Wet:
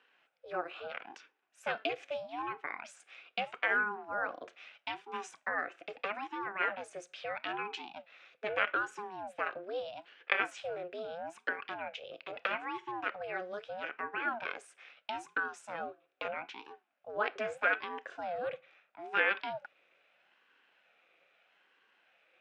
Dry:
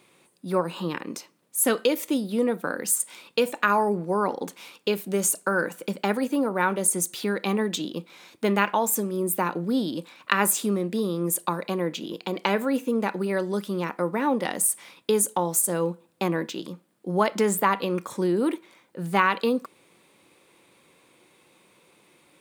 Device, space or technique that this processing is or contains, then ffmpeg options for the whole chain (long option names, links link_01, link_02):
voice changer toy: -af "aeval=exprs='val(0)*sin(2*PI*400*n/s+400*0.55/0.78*sin(2*PI*0.78*n/s))':channel_layout=same,highpass=470,equalizer=frequency=520:width_type=q:width=4:gain=4,equalizer=frequency=940:width_type=q:width=4:gain=-6,equalizer=frequency=1500:width_type=q:width=4:gain=8,equalizer=frequency=2500:width_type=q:width=4:gain=8,equalizer=frequency=4400:width_type=q:width=4:gain=-8,lowpass=frequency=4700:width=0.5412,lowpass=frequency=4700:width=1.3066,volume=-8dB"